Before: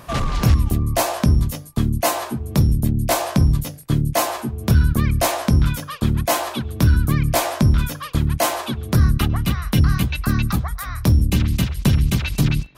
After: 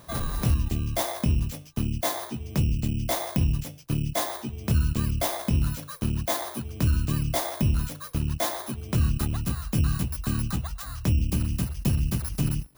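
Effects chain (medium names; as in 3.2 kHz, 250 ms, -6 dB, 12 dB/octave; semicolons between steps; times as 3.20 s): bit-reversed sample order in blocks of 16 samples; trim -8 dB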